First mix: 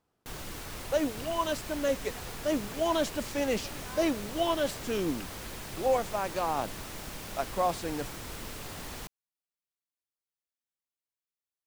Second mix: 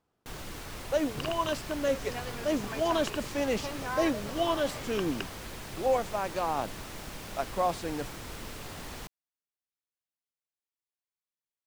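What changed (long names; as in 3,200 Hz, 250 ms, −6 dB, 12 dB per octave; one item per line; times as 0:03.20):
second sound +11.5 dB
master: add high-shelf EQ 7,300 Hz −4.5 dB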